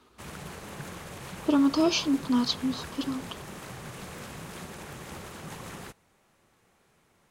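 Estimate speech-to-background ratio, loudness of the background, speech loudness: 14.5 dB, −41.5 LKFS, −27.0 LKFS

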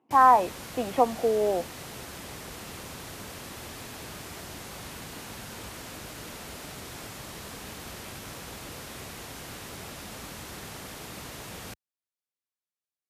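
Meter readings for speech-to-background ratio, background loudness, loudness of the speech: 16.5 dB, −40.0 LKFS, −23.5 LKFS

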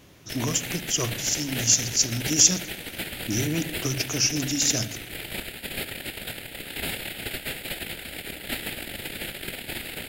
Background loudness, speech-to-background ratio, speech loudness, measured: −33.0 LKFS, 9.5 dB, −23.5 LKFS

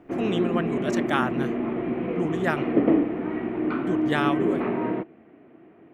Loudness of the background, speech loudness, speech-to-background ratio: −26.0 LKFS, −29.5 LKFS, −3.5 dB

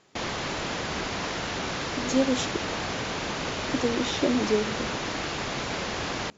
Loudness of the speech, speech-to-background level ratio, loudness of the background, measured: −28.5 LKFS, 2.0 dB, −30.5 LKFS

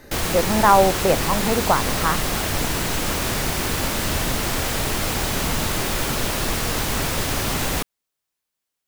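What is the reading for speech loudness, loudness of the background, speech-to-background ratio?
−20.5 LKFS, −22.5 LKFS, 2.0 dB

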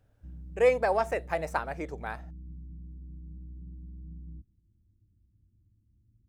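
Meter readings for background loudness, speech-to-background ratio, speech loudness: −46.5 LKFS, 18.0 dB, −28.5 LKFS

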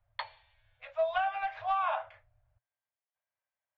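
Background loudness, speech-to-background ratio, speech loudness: −44.0 LKFS, 11.5 dB, −32.5 LKFS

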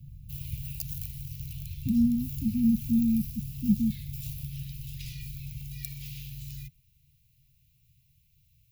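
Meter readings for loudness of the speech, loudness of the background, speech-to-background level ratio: −27.5 LKFS, −39.5 LKFS, 12.0 dB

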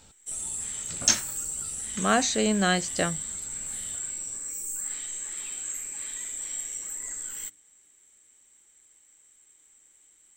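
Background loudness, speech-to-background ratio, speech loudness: −32.0 LKFS, 6.5 dB, −25.5 LKFS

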